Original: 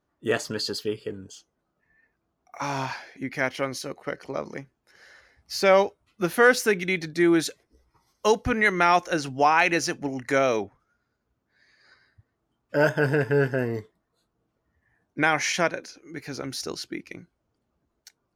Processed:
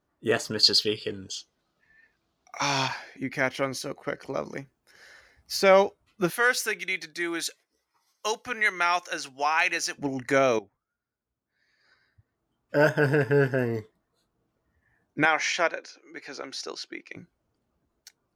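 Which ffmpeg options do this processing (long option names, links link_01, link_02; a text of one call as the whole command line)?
ffmpeg -i in.wav -filter_complex "[0:a]asettb=1/sr,asplit=3[link_01][link_02][link_03];[link_01]atrim=end=0.634[link_04];[link_02]atrim=start=0.63:end=2.88,asetpts=PTS-STARTPTS,afade=type=in:duration=0.004:curve=qsin,afade=type=out:start_time=2.246:duration=0.004:curve=qsin,equalizer=frequency=4000:width=0.79:gain=14[link_05];[link_03]atrim=start=2.876[link_06];[link_04][link_05]acrossfade=duration=0.004:curve1=hsin:curve2=qsin[link_07];[link_07][link_06]acrossfade=duration=0.004:curve1=qsin:curve2=hsin,asettb=1/sr,asplit=3[link_08][link_09][link_10];[link_08]atrim=end=4.244[link_11];[link_09]atrim=start=4.24:end=5.57,asetpts=PTS-STARTPTS,afade=type=in:duration=0.004:curve=qsin,afade=type=out:start_time=1.326:duration=0.004:curve=qsin,highshelf=frequency=8700:gain=7[link_12];[link_10]atrim=start=5.566[link_13];[link_11][link_12]acrossfade=duration=0.004:curve1=hsin:curve2=qsin[link_14];[link_14][link_13]acrossfade=duration=0.004:curve1=qsin:curve2=hsin,asettb=1/sr,asplit=3[link_15][link_16][link_17];[link_15]atrim=end=6.304[link_18];[link_16]atrim=start=6.3:end=9.98,asetpts=PTS-STARTPTS,afade=type=in:duration=0.004:curve=qsin,afade=type=out:start_time=3.676:duration=0.004:curve=qsin,highpass=frequency=1500:poles=1[link_19];[link_17]atrim=start=9.976[link_20];[link_18][link_19]acrossfade=duration=0.004:curve1=hsin:curve2=qsin[link_21];[link_21][link_20]acrossfade=duration=0.004:curve1=qsin:curve2=hsin,asettb=1/sr,asplit=3[link_22][link_23][link_24];[link_22]atrim=end=15.254[link_25];[link_23]atrim=start=15.25:end=17.16,asetpts=PTS-STARTPTS,afade=type=in:duration=0.004:curve=qsin,afade=type=out:start_time=1.906:duration=0.004:curve=qsin,highpass=460,lowpass=5600[link_26];[link_24]atrim=start=17.156[link_27];[link_25][link_26]acrossfade=duration=0.004:curve1=hsin:curve2=qsin[link_28];[link_28][link_27]acrossfade=duration=0.004:curve1=qsin:curve2=hsin,asplit=2[link_29][link_30];[link_29]atrim=end=10.59,asetpts=PTS-STARTPTS,afade=type=out:start_time=10.586:duration=0.004:curve=hsin:silence=0.177828[link_31];[link_30]atrim=start=10.59,asetpts=PTS-STARTPTS,afade=type=in:duration=2.16:curve=qua:silence=0.177828[link_32];[link_31][link_32]concat=n=2:v=0:a=1" out.wav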